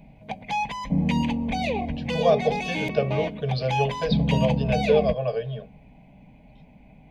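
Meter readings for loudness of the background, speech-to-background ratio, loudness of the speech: -26.5 LUFS, 0.5 dB, -26.0 LUFS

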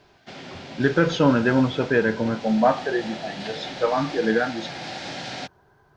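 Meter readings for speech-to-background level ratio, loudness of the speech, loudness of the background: 13.0 dB, -22.5 LUFS, -35.5 LUFS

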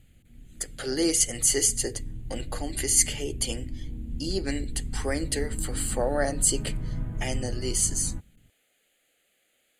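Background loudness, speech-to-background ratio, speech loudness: -37.0 LUFS, 10.5 dB, -26.5 LUFS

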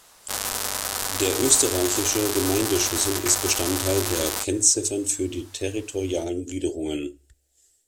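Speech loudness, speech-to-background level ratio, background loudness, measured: -23.5 LUFS, 2.5 dB, -26.0 LUFS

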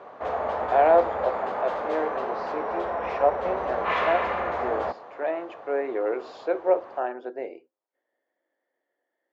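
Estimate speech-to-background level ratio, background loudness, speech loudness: 1.5 dB, -29.0 LUFS, -27.5 LUFS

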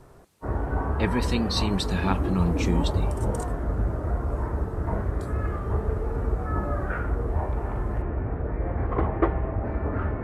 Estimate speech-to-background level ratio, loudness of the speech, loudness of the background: 0.5 dB, -28.0 LUFS, -28.5 LUFS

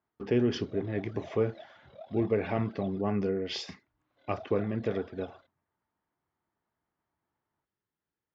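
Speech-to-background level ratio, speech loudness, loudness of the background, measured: 18.5 dB, -32.0 LUFS, -50.5 LUFS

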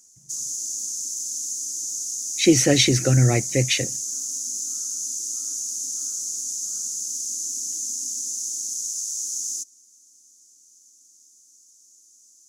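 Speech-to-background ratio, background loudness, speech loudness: 7.5 dB, -26.5 LUFS, -19.0 LUFS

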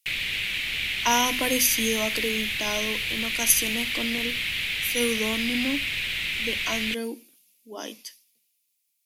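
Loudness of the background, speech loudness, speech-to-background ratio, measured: -26.5 LUFS, -27.0 LUFS, -0.5 dB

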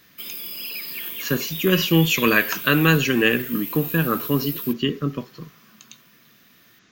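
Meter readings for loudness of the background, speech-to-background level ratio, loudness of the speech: -29.0 LUFS, 8.0 dB, -21.0 LUFS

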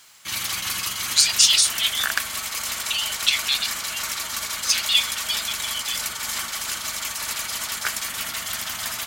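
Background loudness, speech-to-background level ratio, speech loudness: -26.0 LUFS, 5.0 dB, -21.0 LUFS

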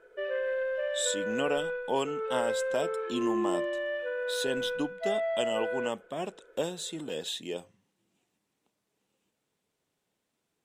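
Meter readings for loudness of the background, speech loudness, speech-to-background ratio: -32.5 LUFS, -34.5 LUFS, -2.0 dB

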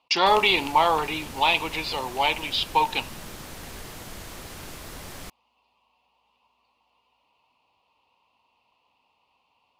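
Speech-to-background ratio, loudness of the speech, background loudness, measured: 17.0 dB, -22.5 LUFS, -39.5 LUFS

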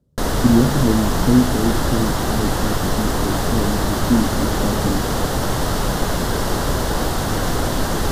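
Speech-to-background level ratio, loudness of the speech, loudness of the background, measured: -0.5 dB, -21.5 LUFS, -21.0 LUFS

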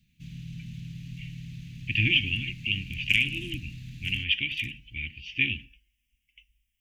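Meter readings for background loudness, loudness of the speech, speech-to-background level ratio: -42.0 LUFS, -27.0 LUFS, 15.0 dB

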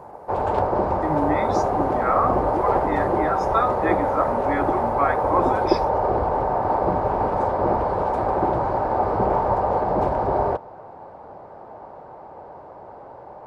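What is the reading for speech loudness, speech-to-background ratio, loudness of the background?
-27.0 LUFS, -5.0 dB, -22.0 LUFS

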